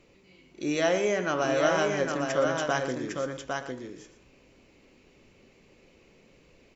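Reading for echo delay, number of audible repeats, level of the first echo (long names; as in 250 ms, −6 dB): 117 ms, 3, −12.5 dB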